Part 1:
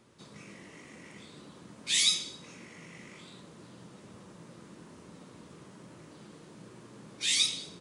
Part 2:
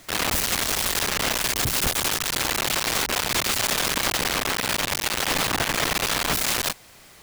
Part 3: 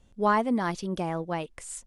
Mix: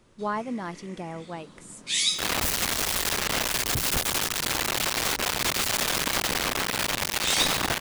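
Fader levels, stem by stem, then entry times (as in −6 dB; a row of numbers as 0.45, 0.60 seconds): +1.0, −2.5, −6.0 decibels; 0.00, 2.10, 0.00 seconds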